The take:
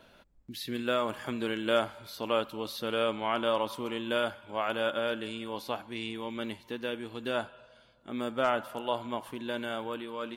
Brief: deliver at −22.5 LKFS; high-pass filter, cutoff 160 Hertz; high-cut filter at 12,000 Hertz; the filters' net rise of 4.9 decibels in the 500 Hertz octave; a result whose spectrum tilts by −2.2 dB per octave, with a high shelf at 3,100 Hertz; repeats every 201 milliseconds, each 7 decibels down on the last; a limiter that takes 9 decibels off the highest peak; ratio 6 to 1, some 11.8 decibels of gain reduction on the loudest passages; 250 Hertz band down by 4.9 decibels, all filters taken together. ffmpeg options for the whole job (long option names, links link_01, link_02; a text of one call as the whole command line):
ffmpeg -i in.wav -af "highpass=160,lowpass=12000,equalizer=frequency=250:width_type=o:gain=-9,equalizer=frequency=500:width_type=o:gain=8,highshelf=frequency=3100:gain=-6.5,acompressor=threshold=-32dB:ratio=6,alimiter=level_in=4dB:limit=-24dB:level=0:latency=1,volume=-4dB,aecho=1:1:201|402|603|804|1005:0.447|0.201|0.0905|0.0407|0.0183,volume=16.5dB" out.wav